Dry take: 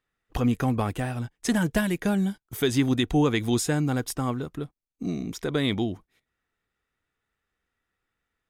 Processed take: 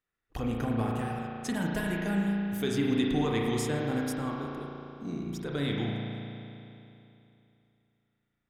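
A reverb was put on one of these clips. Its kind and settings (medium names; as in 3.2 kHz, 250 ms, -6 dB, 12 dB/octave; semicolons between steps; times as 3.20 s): spring tank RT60 2.9 s, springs 35 ms, chirp 25 ms, DRR -2 dB; trim -8.5 dB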